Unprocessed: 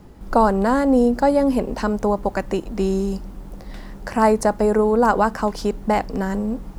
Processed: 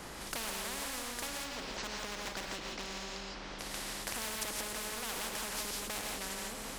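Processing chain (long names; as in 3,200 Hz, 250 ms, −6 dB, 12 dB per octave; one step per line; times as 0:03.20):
variable-slope delta modulation 64 kbit/s
0:01.27–0:03.59: low-pass filter 5,200 Hz 24 dB per octave
hard clipping −18 dBFS, distortion −9 dB
reverb whose tail is shaped and stops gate 190 ms rising, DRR 0.5 dB
downward compressor, threshold −25 dBFS, peak gain reduction 10.5 dB
every bin compressed towards the loudest bin 4 to 1
level −4.5 dB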